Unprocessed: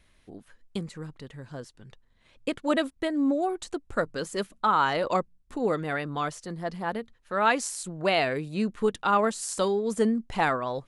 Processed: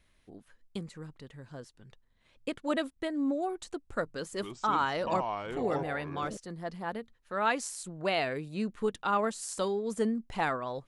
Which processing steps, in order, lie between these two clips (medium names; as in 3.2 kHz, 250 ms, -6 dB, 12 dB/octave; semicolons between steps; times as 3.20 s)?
4.08–6.37 s: ever faster or slower copies 246 ms, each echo -5 st, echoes 3, each echo -6 dB; trim -5.5 dB